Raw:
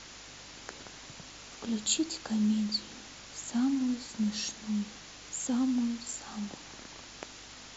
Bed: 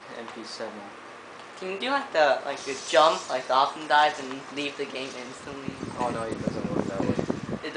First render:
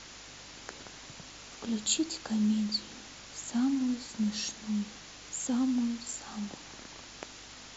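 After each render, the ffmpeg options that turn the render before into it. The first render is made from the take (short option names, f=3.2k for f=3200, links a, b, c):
-af anull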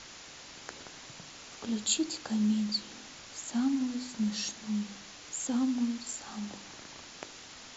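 -af "bandreject=f=50:t=h:w=4,bandreject=f=100:t=h:w=4,bandreject=f=150:t=h:w=4,bandreject=f=200:t=h:w=4,bandreject=f=250:t=h:w=4,bandreject=f=300:t=h:w=4,bandreject=f=350:t=h:w=4,bandreject=f=400:t=h:w=4,bandreject=f=450:t=h:w=4,bandreject=f=500:t=h:w=4,bandreject=f=550:t=h:w=4"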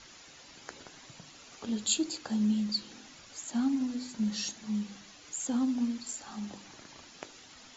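-af "afftdn=nr=8:nf=-49"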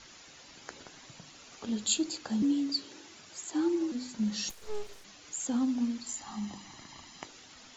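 -filter_complex "[0:a]asettb=1/sr,asplit=3[a][b][c];[a]atrim=end=2.424[d];[b]atrim=start=2.42:end=3.92,asetpts=PTS-STARTPTS,afade=t=in:d=0.004:c=qsin,afade=t=out:st=1.496:d=0.004:c=qsin,afreqshift=70[e];[c]atrim=start=3.916[f];[d][e]acrossfade=d=0.004:c1=hsin:c2=qsin[g];[g][f]acrossfade=d=0.004:c1=qsin:c2=hsin,asplit=3[h][i][j];[h]afade=t=out:st=4.49:d=0.02[k];[i]aeval=exprs='abs(val(0))':c=same,afade=t=in:st=4.49:d=0.02,afade=t=out:st=5.03:d=0.02[l];[j]afade=t=in:st=5.03:d=0.02[m];[k][l][m]amix=inputs=3:normalize=0,asettb=1/sr,asplit=3[n][o][p];[n]atrim=end=6.084[q];[o]atrim=start=6.08:end=7.27,asetpts=PTS-STARTPTS,afade=t=in:d=0.004:c=qsin,afade=t=out:st=1.186:d=0.004:c=qsin,aecho=1:1:1:0.57,atrim=end_sample=52479[r];[p]atrim=start=7.266[s];[q][r]acrossfade=d=0.004:c1=hsin:c2=qsin[t];[t][s]acrossfade=d=0.004:c1=qsin:c2=hsin"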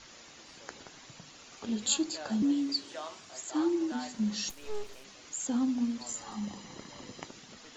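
-filter_complex "[1:a]volume=-23dB[a];[0:a][a]amix=inputs=2:normalize=0"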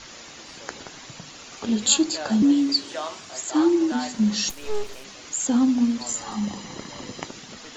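-af "volume=10dB"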